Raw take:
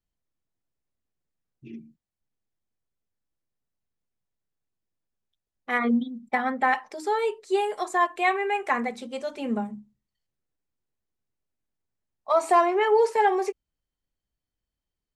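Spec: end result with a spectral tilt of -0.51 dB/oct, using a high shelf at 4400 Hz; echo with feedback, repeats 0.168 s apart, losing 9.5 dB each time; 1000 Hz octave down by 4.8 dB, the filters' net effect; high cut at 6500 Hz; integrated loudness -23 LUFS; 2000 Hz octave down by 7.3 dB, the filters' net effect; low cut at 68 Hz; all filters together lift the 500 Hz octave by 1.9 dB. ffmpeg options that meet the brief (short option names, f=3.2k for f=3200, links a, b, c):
-af "highpass=68,lowpass=6.5k,equalizer=f=500:t=o:g=4.5,equalizer=f=1k:t=o:g=-7.5,equalizer=f=2k:t=o:g=-5.5,highshelf=f=4.4k:g=-5.5,aecho=1:1:168|336|504|672:0.335|0.111|0.0365|0.012,volume=2.5dB"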